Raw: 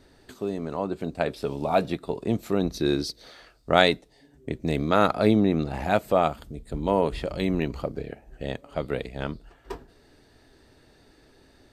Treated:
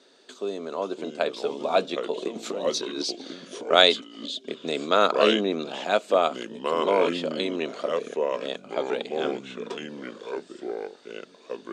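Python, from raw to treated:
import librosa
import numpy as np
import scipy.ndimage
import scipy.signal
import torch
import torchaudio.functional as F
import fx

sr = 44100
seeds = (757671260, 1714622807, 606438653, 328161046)

y = fx.over_compress(x, sr, threshold_db=-28.0, ratio=-0.5, at=(2.18, 3.02))
y = fx.echo_pitch(y, sr, ms=455, semitones=-4, count=2, db_per_echo=-6.0)
y = fx.cabinet(y, sr, low_hz=280.0, low_slope=24, high_hz=8300.0, hz=(310.0, 820.0, 1900.0, 3500.0, 6700.0), db=(-7, -7, -6, 6, 4))
y = F.gain(torch.from_numpy(y), 2.5).numpy()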